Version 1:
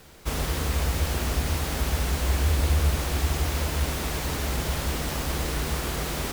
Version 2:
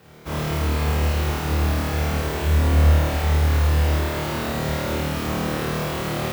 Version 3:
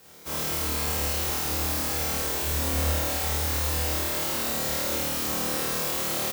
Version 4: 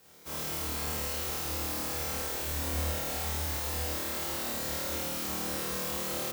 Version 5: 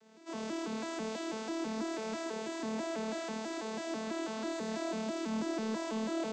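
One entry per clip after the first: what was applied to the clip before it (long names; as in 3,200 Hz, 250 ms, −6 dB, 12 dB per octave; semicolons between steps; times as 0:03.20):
high-pass filter 88 Hz 12 dB per octave; parametric band 9,100 Hz −10.5 dB 2.4 octaves; on a send: flutter between parallel walls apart 4.5 metres, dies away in 1.4 s
bass and treble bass −7 dB, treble +14 dB; double-tracking delay 30 ms −12 dB; level −5.5 dB
feedback echo with a low-pass in the loop 204 ms, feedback 81%, level −9 dB; level −6.5 dB
vocoder with an arpeggio as carrier bare fifth, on A3, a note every 164 ms; in parallel at −10 dB: hard clipping −39.5 dBFS, distortion −9 dB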